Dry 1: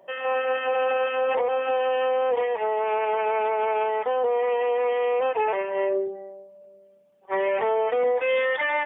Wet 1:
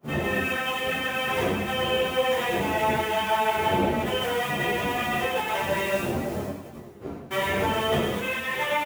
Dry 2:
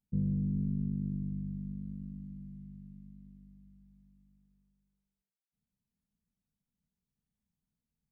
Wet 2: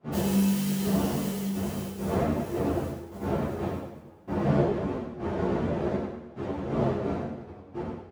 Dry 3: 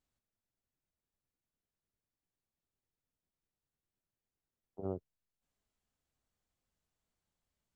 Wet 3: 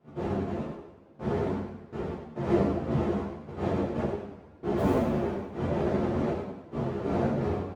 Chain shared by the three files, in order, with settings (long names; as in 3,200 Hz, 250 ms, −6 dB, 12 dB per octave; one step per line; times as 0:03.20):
spectral envelope flattened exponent 0.3
wind on the microphone 390 Hz −26 dBFS
noise gate −36 dBFS, range −24 dB
high-pass filter 89 Hz 12 dB per octave
dynamic equaliser 630 Hz, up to +5 dB, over −40 dBFS, Q 5
downward compressor 6 to 1, threshold −24 dBFS
repeating echo 97 ms, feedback 42%, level −6 dB
coupled-rooms reverb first 0.37 s, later 2.4 s, from −20 dB, DRR −1 dB
string-ensemble chorus